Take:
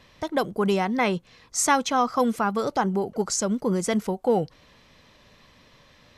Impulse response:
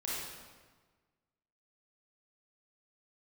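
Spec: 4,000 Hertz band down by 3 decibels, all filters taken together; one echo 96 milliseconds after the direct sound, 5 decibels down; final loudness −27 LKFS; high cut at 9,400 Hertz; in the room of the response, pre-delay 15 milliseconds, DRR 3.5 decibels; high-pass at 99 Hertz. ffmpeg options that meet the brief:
-filter_complex "[0:a]highpass=99,lowpass=9400,equalizer=frequency=4000:width_type=o:gain=-4,aecho=1:1:96:0.562,asplit=2[link_01][link_02];[1:a]atrim=start_sample=2205,adelay=15[link_03];[link_02][link_03]afir=irnorm=-1:irlink=0,volume=-7dB[link_04];[link_01][link_04]amix=inputs=2:normalize=0,volume=-5dB"

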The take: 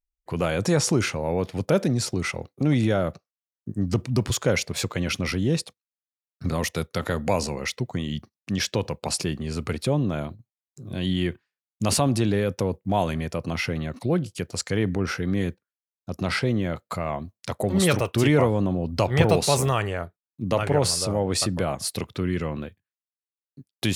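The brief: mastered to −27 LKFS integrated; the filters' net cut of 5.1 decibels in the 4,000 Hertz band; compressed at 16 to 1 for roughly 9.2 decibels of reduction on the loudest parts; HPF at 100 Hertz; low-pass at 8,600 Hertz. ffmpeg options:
ffmpeg -i in.wav -af "highpass=100,lowpass=8600,equalizer=frequency=4000:width_type=o:gain=-6.5,acompressor=threshold=-23dB:ratio=16,volume=3.5dB" out.wav

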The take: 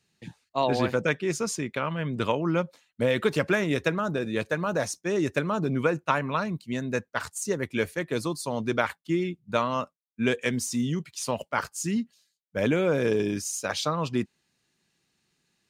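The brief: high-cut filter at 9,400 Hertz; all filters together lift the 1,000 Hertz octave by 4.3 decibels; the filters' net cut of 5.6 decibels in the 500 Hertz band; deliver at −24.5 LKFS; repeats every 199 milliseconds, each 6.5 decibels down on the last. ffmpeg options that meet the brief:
ffmpeg -i in.wav -af "lowpass=9400,equalizer=frequency=500:width_type=o:gain=-9,equalizer=frequency=1000:width_type=o:gain=7.5,aecho=1:1:199|398|597|796|995|1194:0.473|0.222|0.105|0.0491|0.0231|0.0109,volume=3dB" out.wav

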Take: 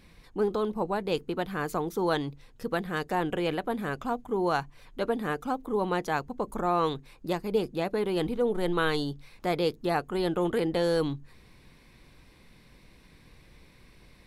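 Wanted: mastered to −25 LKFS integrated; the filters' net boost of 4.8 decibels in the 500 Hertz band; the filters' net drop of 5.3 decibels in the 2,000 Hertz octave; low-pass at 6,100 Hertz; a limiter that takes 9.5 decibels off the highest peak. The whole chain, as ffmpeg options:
ffmpeg -i in.wav -af "lowpass=6100,equalizer=frequency=500:width_type=o:gain=6,equalizer=frequency=2000:width_type=o:gain=-8,volume=5.5dB,alimiter=limit=-15dB:level=0:latency=1" out.wav

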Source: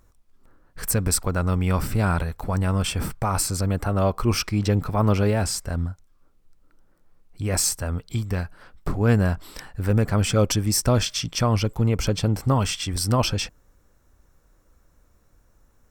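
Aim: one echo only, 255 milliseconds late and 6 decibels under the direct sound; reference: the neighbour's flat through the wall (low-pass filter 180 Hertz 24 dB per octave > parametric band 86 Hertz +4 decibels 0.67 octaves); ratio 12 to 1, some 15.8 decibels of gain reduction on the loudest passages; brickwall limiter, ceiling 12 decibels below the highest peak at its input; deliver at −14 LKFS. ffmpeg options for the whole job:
ffmpeg -i in.wav -af "acompressor=threshold=-30dB:ratio=12,alimiter=level_in=4dB:limit=-24dB:level=0:latency=1,volume=-4dB,lowpass=frequency=180:width=0.5412,lowpass=frequency=180:width=1.3066,equalizer=frequency=86:width_type=o:width=0.67:gain=4,aecho=1:1:255:0.501,volume=24.5dB" out.wav

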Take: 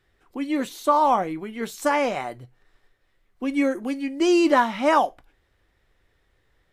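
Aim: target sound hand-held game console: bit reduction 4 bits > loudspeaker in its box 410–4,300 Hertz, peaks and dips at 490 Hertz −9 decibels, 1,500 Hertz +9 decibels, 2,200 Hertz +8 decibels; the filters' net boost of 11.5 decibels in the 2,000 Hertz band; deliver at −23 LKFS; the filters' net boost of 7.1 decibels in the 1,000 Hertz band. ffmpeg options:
ffmpeg -i in.wav -af "equalizer=frequency=1000:width_type=o:gain=7,equalizer=frequency=2000:width_type=o:gain=3,acrusher=bits=3:mix=0:aa=0.000001,highpass=410,equalizer=frequency=490:width_type=q:width=4:gain=-9,equalizer=frequency=1500:width_type=q:width=4:gain=9,equalizer=frequency=2200:width_type=q:width=4:gain=8,lowpass=frequency=4300:width=0.5412,lowpass=frequency=4300:width=1.3066,volume=-5.5dB" out.wav

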